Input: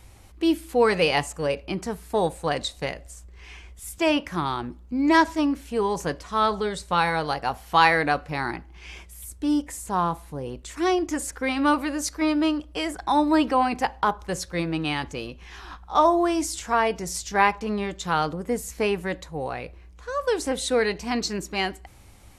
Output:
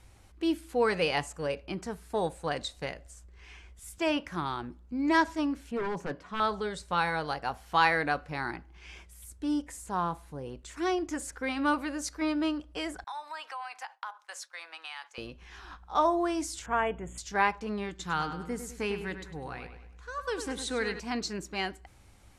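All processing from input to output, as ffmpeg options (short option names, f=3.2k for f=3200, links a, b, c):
-filter_complex "[0:a]asettb=1/sr,asplit=3[a][b][c];[a]atrim=end=5.714[d];[b]atrim=start=5.71:end=6.4,asetpts=PTS-STARTPTS,afade=t=in:d=0.004:c=qsin,afade=t=out:st=0.686:d=0.004:c=qsin,highpass=180,aeval=exprs='0.0891*(abs(mod(val(0)/0.0891+3,4)-2)-1)':c=same,bass=f=250:g=9,treble=f=4k:g=-13[e];[c]atrim=start=6.396[f];[d][e]acrossfade=d=0.004:c1=hsin:c2=qsin[g];[g][f]acrossfade=d=0.004:c1=qsin:c2=hsin,asettb=1/sr,asplit=3[h][i][j];[h]atrim=end=13.044[k];[i]atrim=start=13.04:end=15.18,asetpts=PTS-STARTPTS,afade=t=in:d=0.004:c=qsin,afade=t=out:st=2.136:d=0.004:c=qsin,agate=range=-33dB:threshold=-37dB:ratio=3:release=100:detection=peak,highpass=f=820:w=0.5412,highpass=f=820:w=1.3066,acompressor=threshold=-31dB:ratio=3:attack=3.2:release=140:knee=1:detection=peak[l];[j]atrim=start=15.176[m];[k][l]acrossfade=d=0.004:c1=hsin:c2=qsin[n];[n][m]acrossfade=d=0.004:c1=qsin:c2=hsin,asettb=1/sr,asplit=3[o][p][q];[o]atrim=end=16.664[r];[p]atrim=start=16.66:end=17.18,asetpts=PTS-STARTPTS,afade=t=in:d=0.004:c=qsin,afade=t=out:st=0.516:d=0.004:c=qsin,adynamicsmooth=sensitivity=2:basefreq=3.6k,asuperstop=centerf=4800:order=20:qfactor=1.6,aeval=exprs='val(0)+0.00708*(sin(2*PI*60*n/s)+sin(2*PI*2*60*n/s)/2+sin(2*PI*3*60*n/s)/3+sin(2*PI*4*60*n/s)/4+sin(2*PI*5*60*n/s)/5)':c=same[s];[q]atrim=start=17.176[t];[r][s]acrossfade=d=0.004:c1=hsin:c2=qsin[u];[u][t]acrossfade=d=0.004:c1=qsin:c2=hsin,asettb=1/sr,asplit=3[v][w][x];[v]atrim=end=17.894[y];[w]atrim=start=17.89:end=21,asetpts=PTS-STARTPTS,afade=t=in:d=0.004:c=qsin,afade=t=out:st=3.106:d=0.004:c=qsin,equalizer=f=600:t=o:w=0.57:g=-10.5,asplit=2[z][aa];[aa]adelay=101,lowpass=f=4.8k:p=1,volume=-9dB,asplit=2[ab][ac];[ac]adelay=101,lowpass=f=4.8k:p=1,volume=0.44,asplit=2[ad][ae];[ae]adelay=101,lowpass=f=4.8k:p=1,volume=0.44,asplit=2[af][ag];[ag]adelay=101,lowpass=f=4.8k:p=1,volume=0.44,asplit=2[ah][ai];[ai]adelay=101,lowpass=f=4.8k:p=1,volume=0.44[aj];[z][ab][ad][af][ah][aj]amix=inputs=6:normalize=0,atrim=end_sample=137151[ak];[x]atrim=start=20.996[al];[y][ak]acrossfade=d=0.004:c1=hsin:c2=qsin[am];[am][al]acrossfade=d=0.004:c1=qsin:c2=hsin,lowpass=11k,equalizer=f=1.5k:t=o:w=0.32:g=3.5,volume=-7dB"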